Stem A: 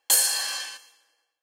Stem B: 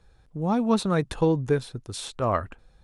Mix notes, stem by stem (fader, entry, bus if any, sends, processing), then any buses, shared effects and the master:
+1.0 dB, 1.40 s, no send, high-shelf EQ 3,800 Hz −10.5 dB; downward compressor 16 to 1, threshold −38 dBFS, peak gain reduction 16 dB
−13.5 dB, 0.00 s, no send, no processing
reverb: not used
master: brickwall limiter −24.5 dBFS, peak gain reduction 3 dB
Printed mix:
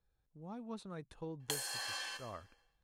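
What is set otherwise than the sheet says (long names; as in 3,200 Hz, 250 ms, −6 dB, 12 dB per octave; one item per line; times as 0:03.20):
stem B −13.5 dB → −23.0 dB
master: missing brickwall limiter −24.5 dBFS, peak gain reduction 3 dB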